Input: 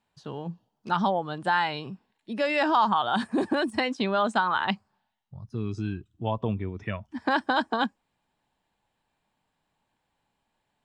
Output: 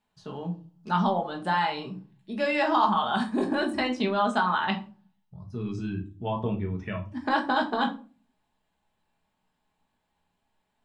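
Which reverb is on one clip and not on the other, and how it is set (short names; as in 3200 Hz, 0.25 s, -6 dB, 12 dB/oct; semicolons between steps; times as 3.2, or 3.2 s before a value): shoebox room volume 210 m³, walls furnished, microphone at 1.4 m; gain -3 dB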